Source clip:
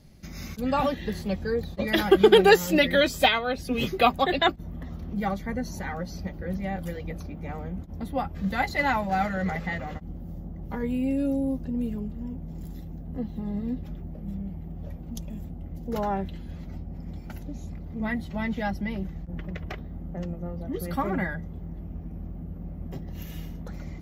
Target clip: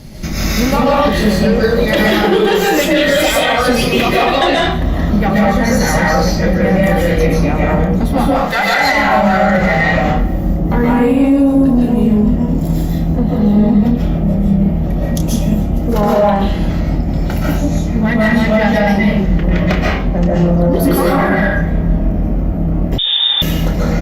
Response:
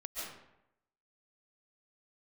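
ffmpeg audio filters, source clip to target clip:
-filter_complex "[0:a]asettb=1/sr,asplit=3[a][b][c];[a]atrim=end=8.294[d];[b]atrim=start=8.29:end=8.79,asetpts=PTS-STARTPTS,afade=t=in:d=0.004:c=qsin,afade=t=out:st=0.496:d=0.004:c=qsin,highpass=590[e];[c]atrim=start=8.786[f];[d][e]acrossfade=d=0.004:c1=hsin:c2=qsin[g];[g][f]acrossfade=d=0.004:c1=qsin:c2=hsin,acompressor=threshold=-30dB:ratio=10,flanger=delay=7.9:depth=8.3:regen=86:speed=1.1:shape=sinusoidal,asoftclip=type=tanh:threshold=-32.5dB,asplit=2[h][i];[i]adelay=29,volume=-8dB[j];[h][j]amix=inputs=2:normalize=0,aecho=1:1:150|300|450|600:0.0944|0.0519|0.0286|0.0157[k];[1:a]atrim=start_sample=2205,afade=t=out:st=0.32:d=0.01,atrim=end_sample=14553[l];[k][l]afir=irnorm=-1:irlink=0,asettb=1/sr,asplit=3[m][n][o];[m]atrim=end=22.984[p];[n]atrim=start=22.98:end=23.42,asetpts=PTS-STARTPTS,afade=t=in:d=0.004:c=qsin,afade=t=out:st=0.436:d=0.004:c=qsin,lowpass=f=3.1k:t=q:w=0.5098,lowpass=f=3.1k:t=q:w=0.6013,lowpass=f=3.1k:t=q:w=0.9,lowpass=f=3.1k:t=q:w=2.563,afreqshift=-3700[q];[o]atrim=start=23.416[r];[p][q]acrossfade=d=0.004:c1=hsin:c2=qsin[s];[s][r]acrossfade=d=0.004:c1=qsin:c2=hsin,alimiter=level_in=32dB:limit=-1dB:release=50:level=0:latency=1,volume=-2dB" -ar 48000 -c:a libopus -b:a 64k

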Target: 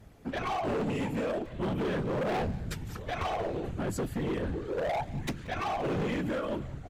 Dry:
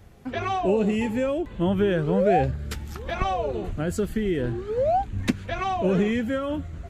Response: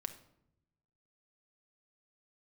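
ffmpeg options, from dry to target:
-filter_complex "[0:a]afftfilt=real='hypot(re,im)*cos(2*PI*random(0))':imag='hypot(re,im)*sin(2*PI*random(1))':win_size=512:overlap=0.75,volume=30dB,asoftclip=hard,volume=-30dB,asplit=2[a][b];[b]adelay=180,highpass=300,lowpass=3.4k,asoftclip=type=hard:threshold=-39dB,volume=-12dB[c];[a][c]amix=inputs=2:normalize=0,volume=2dB"

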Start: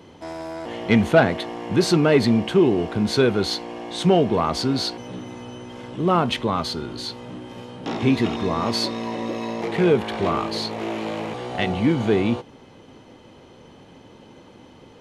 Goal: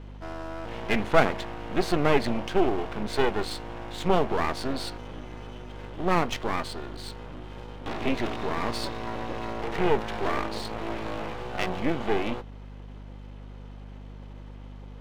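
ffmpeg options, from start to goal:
-af "bass=f=250:g=-9,treble=f=4k:g=-11,aeval=exprs='max(val(0),0)':c=same,aeval=exprs='val(0)+0.00891*(sin(2*PI*50*n/s)+sin(2*PI*2*50*n/s)/2+sin(2*PI*3*50*n/s)/3+sin(2*PI*4*50*n/s)/4+sin(2*PI*5*50*n/s)/5)':c=same"

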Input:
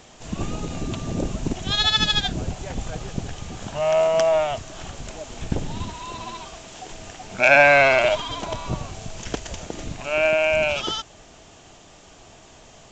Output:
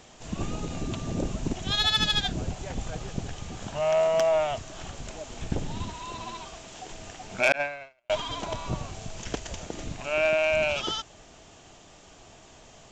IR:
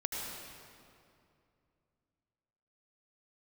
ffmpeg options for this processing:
-filter_complex "[0:a]asettb=1/sr,asplit=3[a][b][c];[a]atrim=end=7.524[d];[b]atrim=start=7.52:end=8.1,asetpts=PTS-STARTPTS,afade=t=in:d=0.004:c=qsin,afade=t=out:st=0.576:d=0.004:c=qsin,agate=range=-55dB:threshold=-10dB:ratio=16:detection=peak[e];[c]atrim=start=8.096[f];[d][e]acrossfade=d=0.004:c1=hsin:c2=qsin[g];[g][f]acrossfade=d=0.004:c1=qsin:c2=hsin,asoftclip=type=tanh:threshold=-9dB,volume=-3.5dB"

